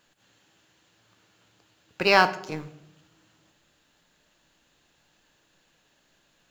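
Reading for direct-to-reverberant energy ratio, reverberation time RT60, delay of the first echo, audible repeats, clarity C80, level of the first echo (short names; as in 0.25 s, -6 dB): 10.5 dB, 0.85 s, none, none, 18.0 dB, none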